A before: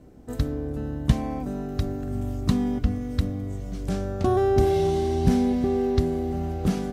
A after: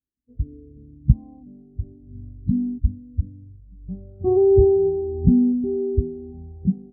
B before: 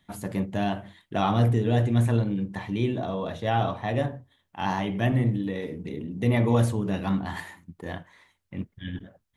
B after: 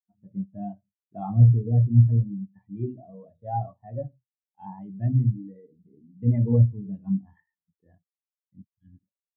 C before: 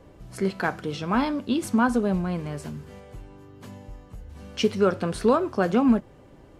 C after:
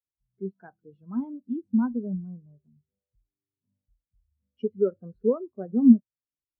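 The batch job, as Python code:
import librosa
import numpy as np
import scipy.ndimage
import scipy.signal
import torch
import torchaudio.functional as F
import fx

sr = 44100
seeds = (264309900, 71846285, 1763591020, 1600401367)

y = fx.air_absorb(x, sr, metres=58.0)
y = fx.spectral_expand(y, sr, expansion=2.5)
y = y * librosa.db_to_amplitude(4.0)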